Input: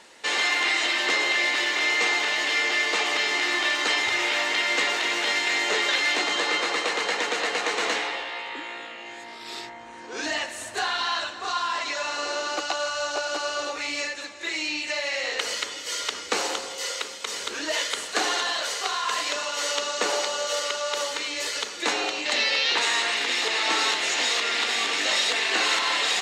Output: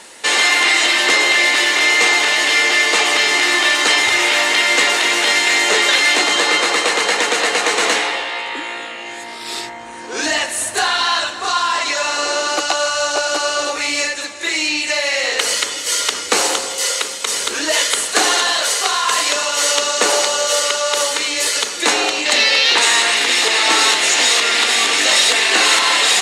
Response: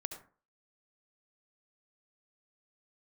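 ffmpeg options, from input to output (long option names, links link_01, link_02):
-af "equalizer=frequency=10000:width=1.4:gain=12.5,acontrast=64,volume=3dB"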